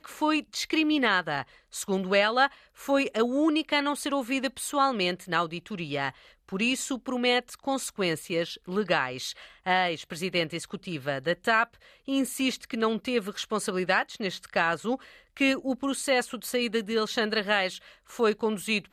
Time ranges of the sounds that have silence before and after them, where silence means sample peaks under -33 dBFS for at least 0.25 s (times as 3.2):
1.75–2.47
2.84–6.1
6.52–9.32
9.67–11.64
12.08–14.96
15.37–17.77